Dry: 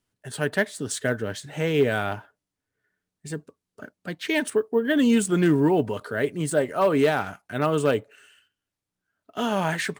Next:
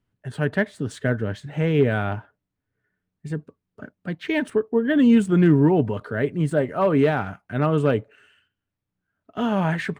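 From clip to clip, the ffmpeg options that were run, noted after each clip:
-af "bass=f=250:g=8,treble=f=4k:g=-14"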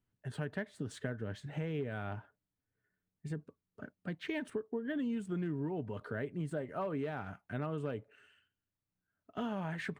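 -af "acompressor=threshold=-26dB:ratio=6,volume=-8.5dB"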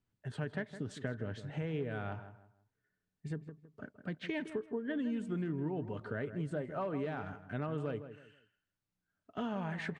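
-filter_complex "[0:a]lowpass=7.6k,asplit=2[a][b];[b]adelay=161,lowpass=f=1.9k:p=1,volume=-11dB,asplit=2[c][d];[d]adelay=161,lowpass=f=1.9k:p=1,volume=0.3,asplit=2[e][f];[f]adelay=161,lowpass=f=1.9k:p=1,volume=0.3[g];[c][e][g]amix=inputs=3:normalize=0[h];[a][h]amix=inputs=2:normalize=0"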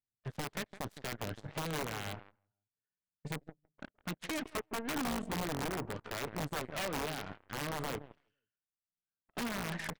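-af "aeval=exprs='(mod(33.5*val(0)+1,2)-1)/33.5':c=same,aeval=exprs='0.0299*(cos(1*acos(clip(val(0)/0.0299,-1,1)))-cos(1*PI/2))+0.00188*(cos(6*acos(clip(val(0)/0.0299,-1,1)))-cos(6*PI/2))+0.00473*(cos(7*acos(clip(val(0)/0.0299,-1,1)))-cos(7*PI/2))':c=same"

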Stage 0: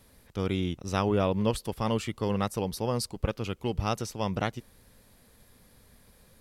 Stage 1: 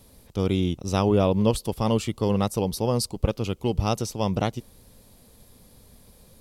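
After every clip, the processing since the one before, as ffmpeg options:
-af "equalizer=f=1.7k:w=1.3:g=-9.5,volume=6dB"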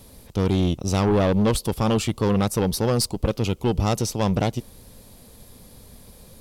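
-af "aeval=exprs='(tanh(11.2*val(0)+0.25)-tanh(0.25))/11.2':c=same,volume=6.5dB"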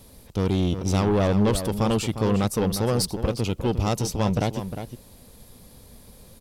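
-filter_complex "[0:a]asplit=2[a][b];[b]adelay=355.7,volume=-9dB,highshelf=f=4k:g=-8[c];[a][c]amix=inputs=2:normalize=0,volume=-2dB"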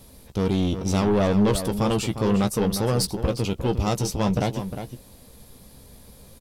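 -filter_complex "[0:a]asplit=2[a][b];[b]adelay=15,volume=-8.5dB[c];[a][c]amix=inputs=2:normalize=0"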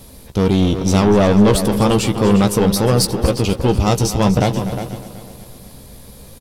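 -af "aecho=1:1:245|490|735|980|1225|1470:0.2|0.11|0.0604|0.0332|0.0183|0.01,volume=8dB"

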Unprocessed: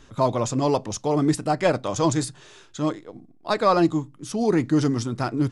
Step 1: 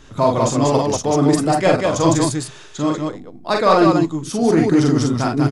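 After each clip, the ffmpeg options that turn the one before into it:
-filter_complex "[0:a]asplit=2[a][b];[b]asoftclip=type=tanh:threshold=-23dB,volume=-11dB[c];[a][c]amix=inputs=2:normalize=0,aecho=1:1:43|55|191:0.668|0.299|0.668,volume=2.5dB"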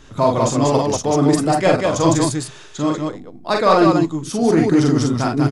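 -af anull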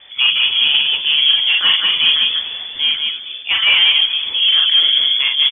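-filter_complex "[0:a]acontrast=79,asplit=7[a][b][c][d][e][f][g];[b]adelay=236,afreqshift=-120,volume=-12dB[h];[c]adelay=472,afreqshift=-240,volume=-16.7dB[i];[d]adelay=708,afreqshift=-360,volume=-21.5dB[j];[e]adelay=944,afreqshift=-480,volume=-26.2dB[k];[f]adelay=1180,afreqshift=-600,volume=-30.9dB[l];[g]adelay=1416,afreqshift=-720,volume=-35.7dB[m];[a][h][i][j][k][l][m]amix=inputs=7:normalize=0,lowpass=f=3k:t=q:w=0.5098,lowpass=f=3k:t=q:w=0.6013,lowpass=f=3k:t=q:w=0.9,lowpass=f=3k:t=q:w=2.563,afreqshift=-3500,volume=-4dB"

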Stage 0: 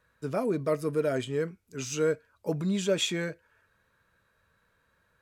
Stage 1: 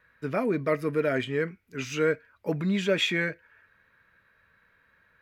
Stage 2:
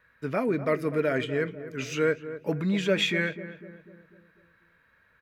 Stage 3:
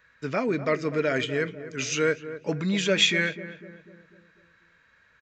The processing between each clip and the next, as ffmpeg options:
-af "equalizer=f=250:t=o:w=1:g=3,equalizer=f=2k:t=o:w=1:g=12,equalizer=f=8k:t=o:w=1:g=-10"
-filter_complex "[0:a]asplit=2[a][b];[b]adelay=248,lowpass=f=1.2k:p=1,volume=-12dB,asplit=2[c][d];[d]adelay=248,lowpass=f=1.2k:p=1,volume=0.53,asplit=2[e][f];[f]adelay=248,lowpass=f=1.2k:p=1,volume=0.53,asplit=2[g][h];[h]adelay=248,lowpass=f=1.2k:p=1,volume=0.53,asplit=2[i][j];[j]adelay=248,lowpass=f=1.2k:p=1,volume=0.53,asplit=2[k][l];[l]adelay=248,lowpass=f=1.2k:p=1,volume=0.53[m];[a][c][e][g][i][k][m]amix=inputs=7:normalize=0"
-af "aresample=16000,aresample=44100,crystalizer=i=3.5:c=0"

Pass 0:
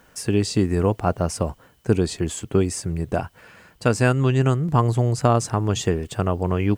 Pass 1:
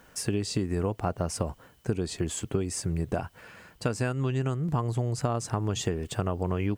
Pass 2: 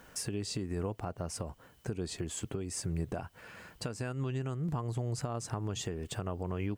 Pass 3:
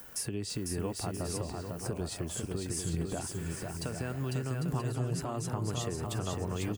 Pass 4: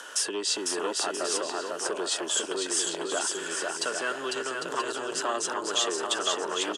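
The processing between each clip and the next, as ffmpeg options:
-af "acompressor=threshold=-23dB:ratio=6,volume=-1.5dB"
-af "alimiter=level_in=1.5dB:limit=-24dB:level=0:latency=1:release=497,volume=-1.5dB"
-filter_complex "[0:a]acrossover=split=360|900|5300[a][b][c][d];[d]acompressor=mode=upward:threshold=-52dB:ratio=2.5[e];[a][b][c][e]amix=inputs=4:normalize=0,aexciter=amount=1.9:drive=5.6:freq=9.7k,aecho=1:1:500|800|980|1088|1153:0.631|0.398|0.251|0.158|0.1"
-af "aeval=exprs='0.112*(cos(1*acos(clip(val(0)/0.112,-1,1)))-cos(1*PI/2))+0.0447*(cos(2*acos(clip(val(0)/0.112,-1,1)))-cos(2*PI/2))':c=same,aeval=exprs='0.133*sin(PI/2*2.51*val(0)/0.133)':c=same,highpass=f=410:w=0.5412,highpass=f=410:w=1.3066,equalizer=f=490:t=q:w=4:g=-5,equalizer=f=740:t=q:w=4:g=-7,equalizer=f=1.5k:t=q:w=4:g=4,equalizer=f=2.2k:t=q:w=4:g=-9,equalizer=f=3.2k:t=q:w=4:g=7,equalizer=f=4.5k:t=q:w=4:g=-3,lowpass=f=8.3k:w=0.5412,lowpass=f=8.3k:w=1.3066,volume=2.5dB"

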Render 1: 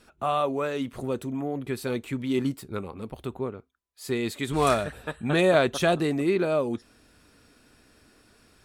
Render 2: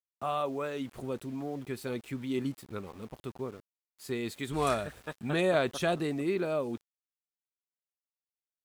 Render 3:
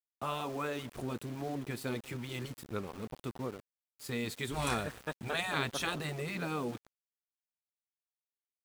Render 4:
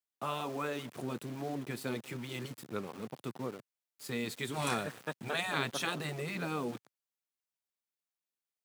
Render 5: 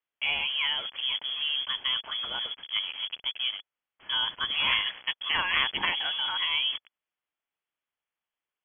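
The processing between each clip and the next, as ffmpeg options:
-af "aeval=exprs='val(0)*gte(abs(val(0)),0.00631)':c=same,volume=-6.5dB"
-filter_complex "[0:a]afftfilt=real='re*lt(hypot(re,im),0.141)':imag='im*lt(hypot(re,im),0.141)':win_size=1024:overlap=0.75,asplit=2[a][b];[b]adelay=194,lowpass=f=1k:p=1,volume=-18dB,asplit=2[c][d];[d]adelay=194,lowpass=f=1k:p=1,volume=0.4,asplit=2[e][f];[f]adelay=194,lowpass=f=1k:p=1,volume=0.4[g];[a][c][e][g]amix=inputs=4:normalize=0,aeval=exprs='val(0)*gte(abs(val(0)),0.00422)':c=same,volume=1.5dB"
-af "highpass=f=120:w=0.5412,highpass=f=120:w=1.3066"
-af "lowpass=f=3k:t=q:w=0.5098,lowpass=f=3k:t=q:w=0.6013,lowpass=f=3k:t=q:w=0.9,lowpass=f=3k:t=q:w=2.563,afreqshift=-3500,volume=8dB"

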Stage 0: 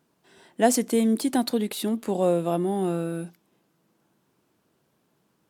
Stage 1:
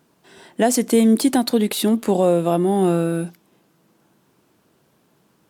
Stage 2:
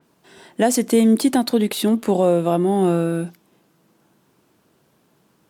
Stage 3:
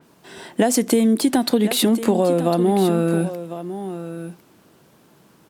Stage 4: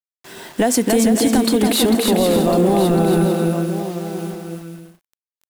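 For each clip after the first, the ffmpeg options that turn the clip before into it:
-af "alimiter=limit=-15dB:level=0:latency=1:release=294,volume=8.5dB"
-af "adynamicequalizer=threshold=0.00794:dfrequency=4200:dqfactor=0.7:tfrequency=4200:tqfactor=0.7:attack=5:release=100:ratio=0.375:range=1.5:mode=cutabove:tftype=highshelf"
-filter_complex "[0:a]acompressor=threshold=-21dB:ratio=6,asplit=2[a][b];[b]aecho=0:1:1052:0.251[c];[a][c]amix=inputs=2:normalize=0,volume=7dB"
-af "acrusher=bits=6:mix=0:aa=0.000001,aecho=1:1:280|448|548.8|609.3|645.6:0.631|0.398|0.251|0.158|0.1,apsyclip=10.5dB,volume=-8.5dB"

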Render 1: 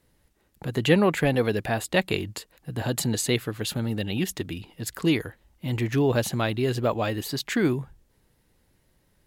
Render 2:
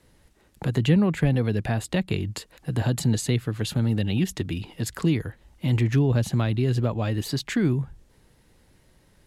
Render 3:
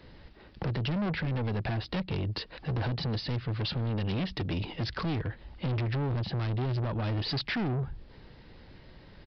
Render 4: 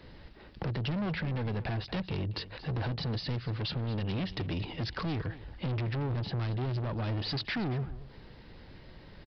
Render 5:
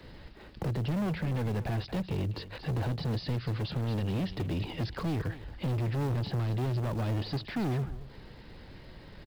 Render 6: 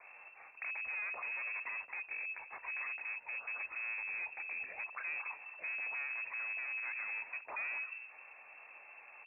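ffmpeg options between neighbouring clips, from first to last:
-filter_complex "[0:a]lowpass=11k,acrossover=split=210[a][b];[b]acompressor=threshold=-39dB:ratio=3[c];[a][c]amix=inputs=2:normalize=0,volume=7dB"
-af "alimiter=limit=-20dB:level=0:latency=1:release=425,aresample=11025,asoftclip=type=tanh:threshold=-35.5dB,aresample=44100,volume=7.5dB"
-filter_complex "[0:a]asplit=2[a][b];[b]acompressor=threshold=-38dB:ratio=6,volume=-0.5dB[c];[a][c]amix=inputs=2:normalize=0,aecho=1:1:228:0.158,volume=-5dB"
-filter_complex "[0:a]acrossover=split=290|900[a][b][c];[b]acrusher=bits=3:mode=log:mix=0:aa=0.000001[d];[c]alimiter=level_in=13.5dB:limit=-24dB:level=0:latency=1:release=49,volume=-13.5dB[e];[a][d][e]amix=inputs=3:normalize=0,volume=2dB"
-filter_complex "[0:a]lowpass=f=2.3k:t=q:w=0.5098,lowpass=f=2.3k:t=q:w=0.6013,lowpass=f=2.3k:t=q:w=0.9,lowpass=f=2.3k:t=q:w=2.563,afreqshift=-2700,alimiter=level_in=2dB:limit=-24dB:level=0:latency=1:release=184,volume=-2dB,acrossover=split=430 2100:gain=0.224 1 0.126[a][b][c];[a][b][c]amix=inputs=3:normalize=0"

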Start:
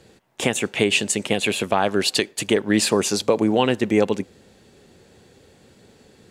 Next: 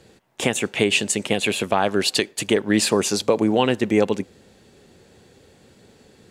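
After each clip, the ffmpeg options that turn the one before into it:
-af anull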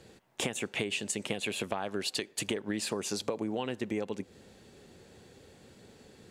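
-af "acompressor=threshold=-26dB:ratio=10,volume=-3.5dB"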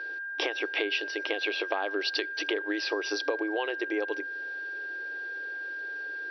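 -af "aeval=exprs='val(0)+0.0126*sin(2*PI*1600*n/s)':c=same,afftfilt=real='re*between(b*sr/4096,290,5900)':imag='im*between(b*sr/4096,290,5900)':win_size=4096:overlap=0.75,volume=4dB"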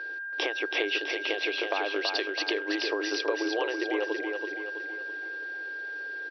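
-af "aecho=1:1:328|656|984|1312|1640|1968:0.596|0.28|0.132|0.0618|0.0291|0.0137"

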